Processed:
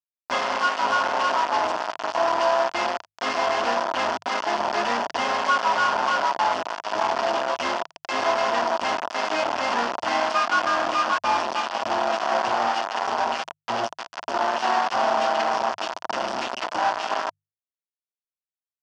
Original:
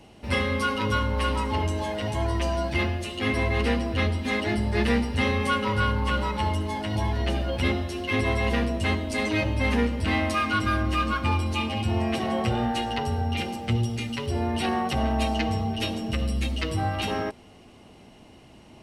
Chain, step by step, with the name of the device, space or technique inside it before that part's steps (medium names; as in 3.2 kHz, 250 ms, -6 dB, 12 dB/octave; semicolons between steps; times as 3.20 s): hand-held game console (bit crusher 4-bit; cabinet simulation 430–5100 Hz, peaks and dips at 450 Hz -6 dB, 680 Hz +9 dB, 970 Hz +9 dB, 1.4 kHz +4 dB, 2.2 kHz -6 dB, 3.9 kHz -9 dB); peaking EQ 5 kHz +2 dB; hum notches 50/100/150 Hz